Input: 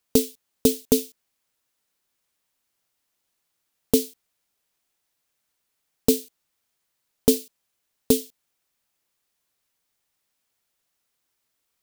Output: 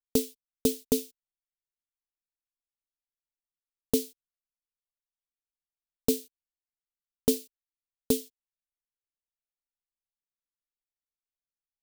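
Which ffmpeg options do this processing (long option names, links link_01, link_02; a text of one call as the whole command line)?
ffmpeg -i in.wav -af "anlmdn=0.00398,volume=-6.5dB" out.wav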